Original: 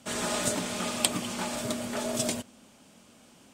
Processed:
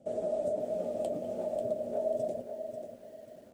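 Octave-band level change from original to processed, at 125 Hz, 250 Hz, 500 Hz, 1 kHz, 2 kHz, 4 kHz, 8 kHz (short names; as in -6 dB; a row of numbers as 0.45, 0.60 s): -10.0 dB, -9.0 dB, +4.5 dB, -8.5 dB, under -25 dB, under -25 dB, under -25 dB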